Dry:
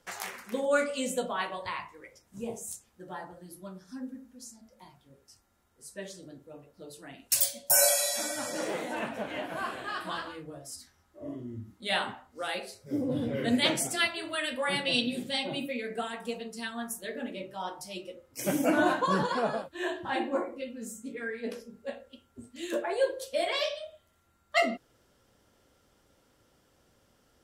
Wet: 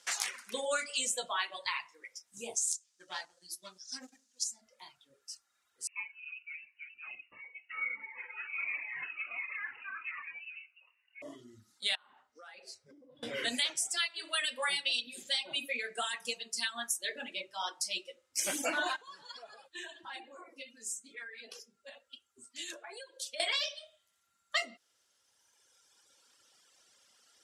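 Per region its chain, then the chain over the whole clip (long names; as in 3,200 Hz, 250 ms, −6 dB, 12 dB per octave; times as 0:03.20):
0:02.55–0:04.44: mu-law and A-law mismatch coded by A + parametric band 6,000 Hz +13 dB 1.5 octaves
0:05.87–0:11.22: downward compressor 1.5 to 1, threshold −48 dBFS + voice inversion scrambler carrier 2,800 Hz + phaser whose notches keep moving one way falling 1.4 Hz
0:11.95–0:13.23: low-pass filter 1,800 Hz 6 dB per octave + mains-hum notches 60/120/180/240/300/360/420/480/540/600 Hz + downward compressor 16 to 1, threshold −45 dBFS
0:18.96–0:23.40: downward compressor, threshold −37 dBFS + flanger 1.5 Hz, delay 2.3 ms, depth 1.2 ms, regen +52%
whole clip: meter weighting curve ITU-R 468; reverb reduction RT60 1.9 s; downward compressor 10 to 1, threshold −29 dBFS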